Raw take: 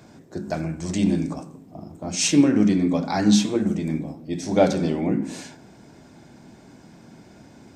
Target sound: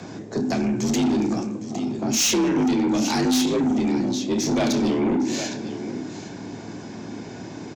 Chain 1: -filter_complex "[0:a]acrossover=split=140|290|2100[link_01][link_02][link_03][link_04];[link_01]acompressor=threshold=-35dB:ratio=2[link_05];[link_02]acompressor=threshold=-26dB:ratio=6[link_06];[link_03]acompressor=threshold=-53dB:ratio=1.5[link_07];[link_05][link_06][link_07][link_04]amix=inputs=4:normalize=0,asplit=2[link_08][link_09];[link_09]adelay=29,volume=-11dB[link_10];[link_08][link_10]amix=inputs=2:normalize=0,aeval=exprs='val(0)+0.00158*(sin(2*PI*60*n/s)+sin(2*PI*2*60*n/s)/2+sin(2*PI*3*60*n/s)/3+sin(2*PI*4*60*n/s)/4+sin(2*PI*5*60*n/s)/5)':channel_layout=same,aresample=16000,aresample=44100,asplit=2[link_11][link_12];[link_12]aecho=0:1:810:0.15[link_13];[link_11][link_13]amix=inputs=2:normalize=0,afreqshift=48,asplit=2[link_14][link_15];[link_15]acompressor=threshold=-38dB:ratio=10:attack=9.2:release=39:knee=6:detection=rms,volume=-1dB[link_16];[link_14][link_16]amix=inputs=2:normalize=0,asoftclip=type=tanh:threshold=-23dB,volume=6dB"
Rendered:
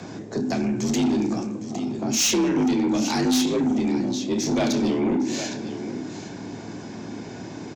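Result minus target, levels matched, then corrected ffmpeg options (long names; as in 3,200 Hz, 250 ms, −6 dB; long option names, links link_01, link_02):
downward compressor: peak gain reduction +8 dB
-filter_complex "[0:a]acrossover=split=140|290|2100[link_01][link_02][link_03][link_04];[link_01]acompressor=threshold=-35dB:ratio=2[link_05];[link_02]acompressor=threshold=-26dB:ratio=6[link_06];[link_03]acompressor=threshold=-53dB:ratio=1.5[link_07];[link_05][link_06][link_07][link_04]amix=inputs=4:normalize=0,asplit=2[link_08][link_09];[link_09]adelay=29,volume=-11dB[link_10];[link_08][link_10]amix=inputs=2:normalize=0,aeval=exprs='val(0)+0.00158*(sin(2*PI*60*n/s)+sin(2*PI*2*60*n/s)/2+sin(2*PI*3*60*n/s)/3+sin(2*PI*4*60*n/s)/4+sin(2*PI*5*60*n/s)/5)':channel_layout=same,aresample=16000,aresample=44100,asplit=2[link_11][link_12];[link_12]aecho=0:1:810:0.15[link_13];[link_11][link_13]amix=inputs=2:normalize=0,afreqshift=48,asplit=2[link_14][link_15];[link_15]acompressor=threshold=-29dB:ratio=10:attack=9.2:release=39:knee=6:detection=rms,volume=-1dB[link_16];[link_14][link_16]amix=inputs=2:normalize=0,asoftclip=type=tanh:threshold=-23dB,volume=6dB"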